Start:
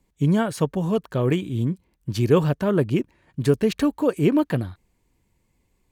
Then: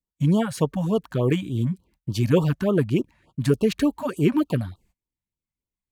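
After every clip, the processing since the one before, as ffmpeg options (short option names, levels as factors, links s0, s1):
-af "agate=range=0.0562:threshold=0.00158:ratio=16:detection=peak,afftfilt=real='re*(1-between(b*sr/1024,350*pow(2000/350,0.5+0.5*sin(2*PI*3.4*pts/sr))/1.41,350*pow(2000/350,0.5+0.5*sin(2*PI*3.4*pts/sr))*1.41))':imag='im*(1-between(b*sr/1024,350*pow(2000/350,0.5+0.5*sin(2*PI*3.4*pts/sr))/1.41,350*pow(2000/350,0.5+0.5*sin(2*PI*3.4*pts/sr))*1.41))':win_size=1024:overlap=0.75"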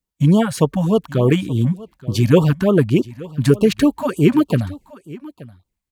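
-af "aecho=1:1:876:0.1,volume=2.11"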